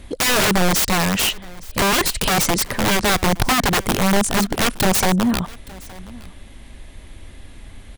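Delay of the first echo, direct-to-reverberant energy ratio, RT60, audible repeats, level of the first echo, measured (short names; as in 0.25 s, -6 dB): 0.868 s, none, none, 1, -22.0 dB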